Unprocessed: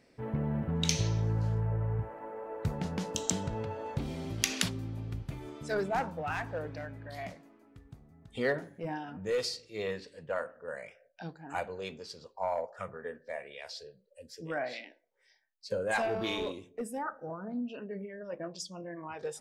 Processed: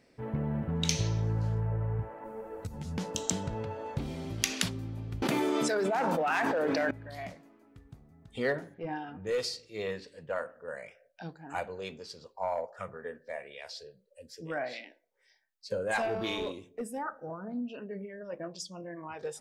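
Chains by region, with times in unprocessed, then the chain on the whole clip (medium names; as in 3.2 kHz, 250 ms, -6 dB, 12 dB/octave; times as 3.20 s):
2.24–2.98 s: tone controls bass +12 dB, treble +14 dB + compression 10:1, threshold -30 dBFS + three-phase chorus
5.22–6.91 s: high-pass 230 Hz 24 dB/octave + level flattener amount 100%
8.74–9.27 s: low-pass 4.5 kHz 24 dB/octave + comb 2.5 ms, depth 34%
whole clip: none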